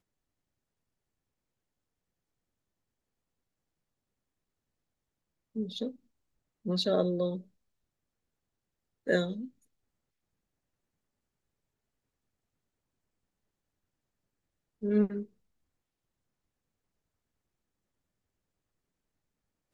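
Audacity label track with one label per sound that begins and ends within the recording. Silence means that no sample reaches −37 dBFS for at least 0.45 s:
5.560000	5.900000	sound
6.660000	7.380000	sound
9.070000	9.450000	sound
14.830000	15.230000	sound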